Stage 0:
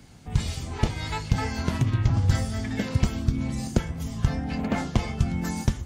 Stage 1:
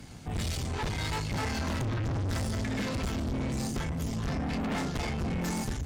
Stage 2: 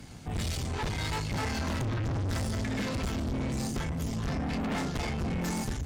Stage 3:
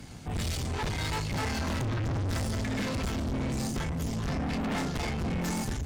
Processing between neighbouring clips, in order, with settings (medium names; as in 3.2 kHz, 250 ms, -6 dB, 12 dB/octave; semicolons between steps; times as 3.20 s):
valve stage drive 35 dB, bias 0.55; trim +6 dB
no audible change
overload inside the chain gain 30 dB; trim +1.5 dB